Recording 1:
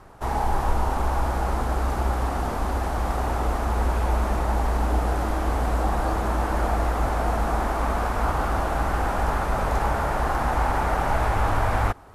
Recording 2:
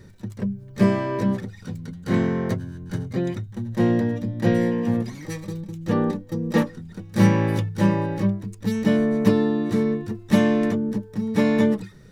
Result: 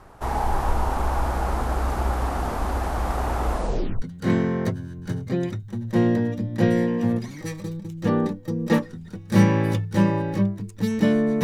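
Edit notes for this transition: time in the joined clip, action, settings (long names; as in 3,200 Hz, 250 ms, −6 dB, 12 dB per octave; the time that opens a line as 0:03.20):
recording 1
0:03.52: tape stop 0.50 s
0:04.02: continue with recording 2 from 0:01.86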